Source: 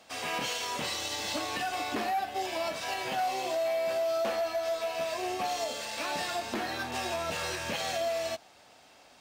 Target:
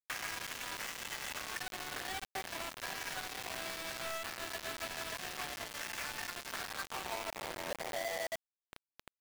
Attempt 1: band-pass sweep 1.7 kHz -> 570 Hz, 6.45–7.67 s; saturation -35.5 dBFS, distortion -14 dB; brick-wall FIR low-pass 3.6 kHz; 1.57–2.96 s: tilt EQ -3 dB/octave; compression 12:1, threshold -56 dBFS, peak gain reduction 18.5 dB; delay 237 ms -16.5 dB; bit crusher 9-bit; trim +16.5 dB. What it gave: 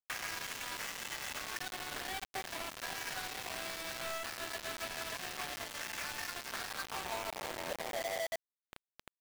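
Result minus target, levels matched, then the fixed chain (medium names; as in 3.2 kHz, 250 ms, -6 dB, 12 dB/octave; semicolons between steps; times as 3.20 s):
saturation: distortion +14 dB
band-pass sweep 1.7 kHz -> 570 Hz, 6.45–7.67 s; saturation -26 dBFS, distortion -27 dB; brick-wall FIR low-pass 3.6 kHz; 1.57–2.96 s: tilt EQ -3 dB/octave; compression 12:1, threshold -56 dBFS, peak gain reduction 23.5 dB; delay 237 ms -16.5 dB; bit crusher 9-bit; trim +16.5 dB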